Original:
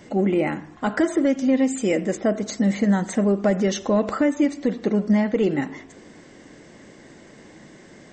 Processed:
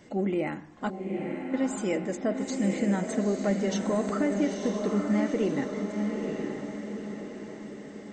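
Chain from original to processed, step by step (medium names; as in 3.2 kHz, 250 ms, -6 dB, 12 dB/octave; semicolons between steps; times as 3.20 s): 0.90–1.54 s: pitch-class resonator C, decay 0.76 s; echo that smears into a reverb 900 ms, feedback 50%, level -4 dB; trim -7.5 dB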